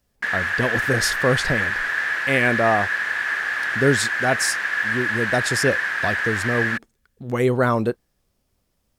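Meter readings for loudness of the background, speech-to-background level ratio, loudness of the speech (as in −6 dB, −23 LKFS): −22.5 LKFS, −1.0 dB, −23.5 LKFS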